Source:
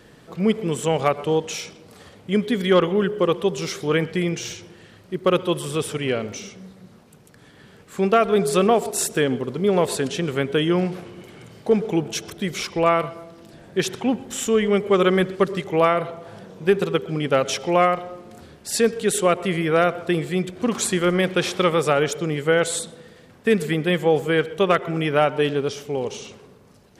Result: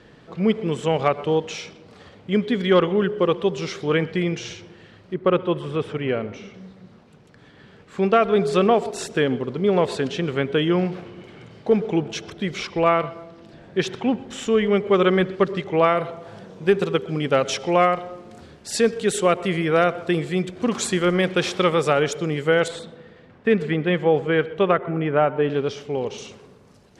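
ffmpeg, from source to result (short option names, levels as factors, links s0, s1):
-af "asetnsamples=n=441:p=0,asendcmd='5.14 lowpass f 2300;6.54 lowpass f 4500;15.88 lowpass f 7700;22.68 lowpass f 2900;24.71 lowpass f 1700;25.5 lowpass f 4500;26.18 lowpass f 9400',lowpass=4600"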